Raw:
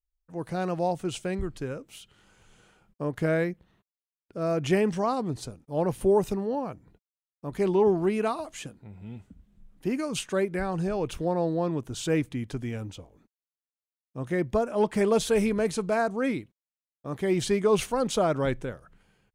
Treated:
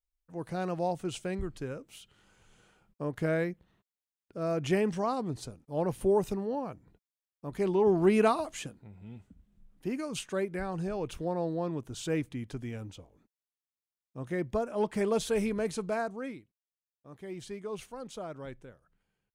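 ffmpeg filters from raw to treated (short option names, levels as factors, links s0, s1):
-af "volume=1.5,afade=t=in:st=7.83:d=0.36:silence=0.421697,afade=t=out:st=8.19:d=0.73:silence=0.354813,afade=t=out:st=15.9:d=0.5:silence=0.298538"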